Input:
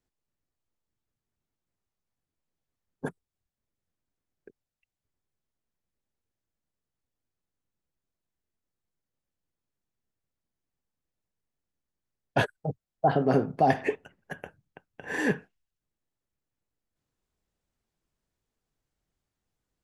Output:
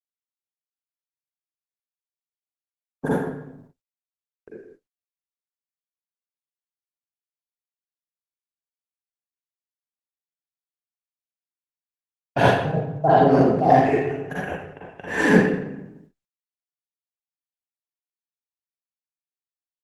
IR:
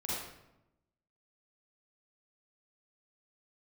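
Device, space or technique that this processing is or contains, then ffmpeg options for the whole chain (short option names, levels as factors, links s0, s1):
speakerphone in a meeting room: -filter_complex "[0:a]asplit=3[s0][s1][s2];[s0]afade=t=out:st=13.56:d=0.02[s3];[s1]lowshelf=f=330:g=3.5,afade=t=in:st=13.56:d=0.02,afade=t=out:st=14.05:d=0.02[s4];[s2]afade=t=in:st=14.05:d=0.02[s5];[s3][s4][s5]amix=inputs=3:normalize=0[s6];[1:a]atrim=start_sample=2205[s7];[s6][s7]afir=irnorm=-1:irlink=0,asplit=2[s8][s9];[s9]adelay=130,highpass=300,lowpass=3400,asoftclip=type=hard:threshold=0.211,volume=0.0631[s10];[s8][s10]amix=inputs=2:normalize=0,dynaudnorm=f=100:g=7:m=3.55,agate=range=0.00316:threshold=0.00398:ratio=16:detection=peak,volume=0.891" -ar 48000 -c:a libopus -b:a 16k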